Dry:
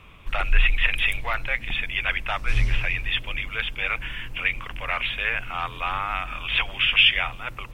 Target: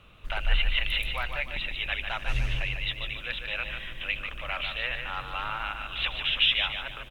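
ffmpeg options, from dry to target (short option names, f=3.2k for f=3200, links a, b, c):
-af "equalizer=f=520:w=3.7:g=5,aecho=1:1:161|322|483|644:0.473|0.175|0.0648|0.024,asetrate=48000,aresample=44100,volume=-6.5dB"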